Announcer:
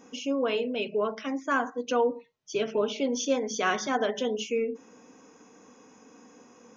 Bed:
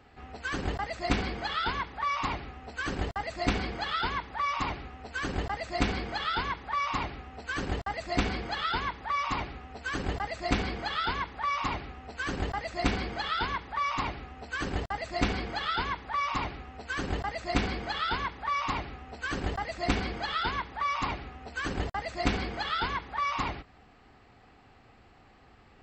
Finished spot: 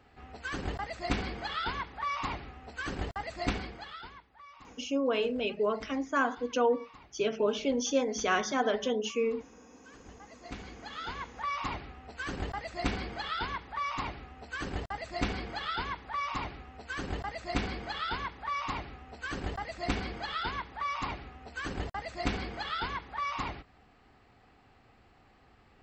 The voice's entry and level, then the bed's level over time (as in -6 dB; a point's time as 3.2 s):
4.65 s, -1.5 dB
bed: 3.49 s -3.5 dB
4.33 s -22.5 dB
9.96 s -22.5 dB
11.45 s -4 dB